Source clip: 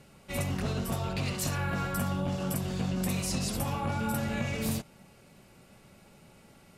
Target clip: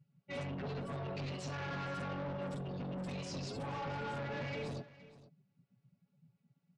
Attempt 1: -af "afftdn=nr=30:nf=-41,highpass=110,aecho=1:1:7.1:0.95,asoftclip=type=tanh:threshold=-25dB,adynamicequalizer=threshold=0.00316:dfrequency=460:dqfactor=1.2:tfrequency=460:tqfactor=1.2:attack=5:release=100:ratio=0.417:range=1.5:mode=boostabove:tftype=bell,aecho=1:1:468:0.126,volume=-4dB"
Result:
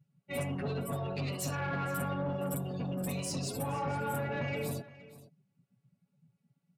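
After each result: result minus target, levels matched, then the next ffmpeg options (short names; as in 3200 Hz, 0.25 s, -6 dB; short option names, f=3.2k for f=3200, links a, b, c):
8000 Hz band +8.0 dB; soft clip: distortion -9 dB
-af "afftdn=nr=30:nf=-41,highpass=110,aecho=1:1:7.1:0.95,asoftclip=type=tanh:threshold=-25dB,adynamicequalizer=threshold=0.00316:dfrequency=460:dqfactor=1.2:tfrequency=460:tqfactor=1.2:attack=5:release=100:ratio=0.417:range=1.5:mode=boostabove:tftype=bell,lowpass=f=5.9k:w=0.5412,lowpass=f=5.9k:w=1.3066,aecho=1:1:468:0.126,volume=-4dB"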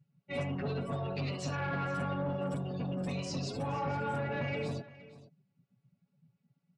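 soft clip: distortion -9 dB
-af "afftdn=nr=30:nf=-41,highpass=110,aecho=1:1:7.1:0.95,asoftclip=type=tanh:threshold=-35dB,adynamicequalizer=threshold=0.00316:dfrequency=460:dqfactor=1.2:tfrequency=460:tqfactor=1.2:attack=5:release=100:ratio=0.417:range=1.5:mode=boostabove:tftype=bell,lowpass=f=5.9k:w=0.5412,lowpass=f=5.9k:w=1.3066,aecho=1:1:468:0.126,volume=-4dB"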